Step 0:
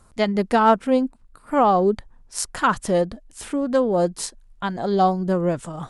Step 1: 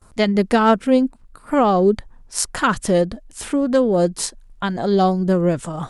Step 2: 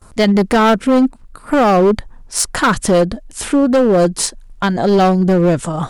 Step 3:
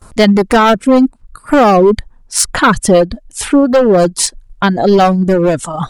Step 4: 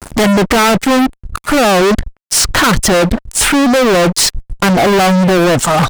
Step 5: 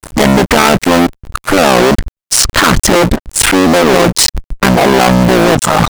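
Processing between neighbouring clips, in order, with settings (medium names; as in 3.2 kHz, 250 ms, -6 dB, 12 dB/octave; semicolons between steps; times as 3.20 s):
gate with hold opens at -45 dBFS; dynamic bell 900 Hz, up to -7 dB, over -31 dBFS, Q 1.2; trim +5 dB
in parallel at -3 dB: peak limiter -10.5 dBFS, peak gain reduction 7 dB; on the sum: hard clipper -10 dBFS, distortion -12 dB; trim +2.5 dB
reverb removal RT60 1.4 s; trim +4.5 dB
low-pass that closes with the level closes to 2.6 kHz, closed at -4.5 dBFS; fuzz box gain 27 dB, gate -35 dBFS; trim +4.5 dB
cycle switcher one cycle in 3, muted; trim +3.5 dB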